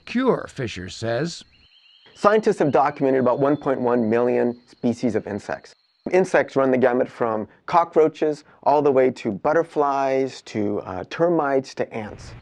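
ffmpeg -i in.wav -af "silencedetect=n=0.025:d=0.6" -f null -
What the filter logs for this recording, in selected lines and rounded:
silence_start: 1.42
silence_end: 2.22 | silence_duration: 0.80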